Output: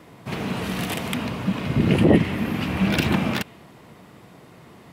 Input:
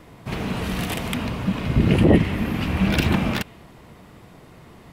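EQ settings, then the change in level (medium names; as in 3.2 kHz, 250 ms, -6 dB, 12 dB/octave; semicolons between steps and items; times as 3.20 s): high-pass 110 Hz 12 dB/octave; 0.0 dB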